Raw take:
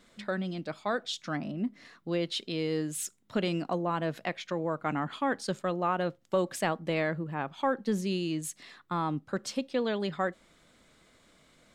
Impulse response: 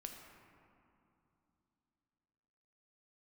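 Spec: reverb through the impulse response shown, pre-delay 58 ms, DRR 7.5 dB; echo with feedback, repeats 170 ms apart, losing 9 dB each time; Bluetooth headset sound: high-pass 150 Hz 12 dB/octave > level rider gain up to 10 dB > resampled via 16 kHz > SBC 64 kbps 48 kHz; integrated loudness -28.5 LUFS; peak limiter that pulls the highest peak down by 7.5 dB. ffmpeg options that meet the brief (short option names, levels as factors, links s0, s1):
-filter_complex "[0:a]alimiter=limit=0.0841:level=0:latency=1,aecho=1:1:170|340|510|680:0.355|0.124|0.0435|0.0152,asplit=2[s0][s1];[1:a]atrim=start_sample=2205,adelay=58[s2];[s1][s2]afir=irnorm=-1:irlink=0,volume=0.668[s3];[s0][s3]amix=inputs=2:normalize=0,highpass=150,dynaudnorm=m=3.16,aresample=16000,aresample=44100,volume=1.68" -ar 48000 -c:a sbc -b:a 64k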